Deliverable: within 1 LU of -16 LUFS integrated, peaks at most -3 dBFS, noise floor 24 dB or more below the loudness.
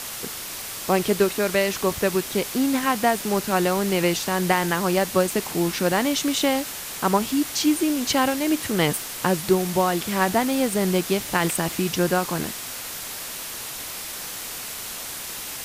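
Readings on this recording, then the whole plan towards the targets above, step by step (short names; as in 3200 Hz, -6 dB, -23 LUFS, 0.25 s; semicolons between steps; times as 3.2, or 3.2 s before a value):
noise floor -34 dBFS; noise floor target -48 dBFS; loudness -23.5 LUFS; peak -5.5 dBFS; loudness target -16.0 LUFS
-> noise print and reduce 14 dB; gain +7.5 dB; limiter -3 dBFS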